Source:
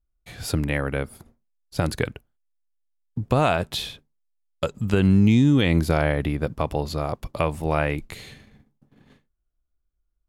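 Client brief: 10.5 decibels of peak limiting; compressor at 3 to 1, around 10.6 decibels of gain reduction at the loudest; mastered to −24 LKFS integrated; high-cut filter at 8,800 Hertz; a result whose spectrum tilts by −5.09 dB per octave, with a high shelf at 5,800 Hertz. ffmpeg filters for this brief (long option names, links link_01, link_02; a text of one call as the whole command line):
ffmpeg -i in.wav -af "lowpass=8800,highshelf=frequency=5800:gain=8,acompressor=threshold=-28dB:ratio=3,volume=11.5dB,alimiter=limit=-12.5dB:level=0:latency=1" out.wav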